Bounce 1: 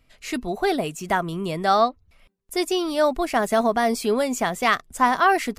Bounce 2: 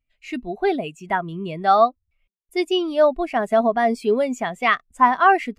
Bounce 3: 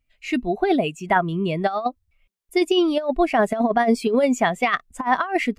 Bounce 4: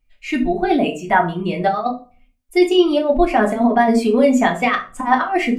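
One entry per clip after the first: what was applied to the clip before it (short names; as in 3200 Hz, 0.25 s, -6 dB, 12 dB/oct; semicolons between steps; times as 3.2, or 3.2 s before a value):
bell 2600 Hz +6.5 dB 0.91 oct; spectral expander 1.5:1
negative-ratio compressor -20 dBFS, ratio -0.5; gain +2.5 dB
reverb RT60 0.40 s, pre-delay 3 ms, DRR -0.5 dB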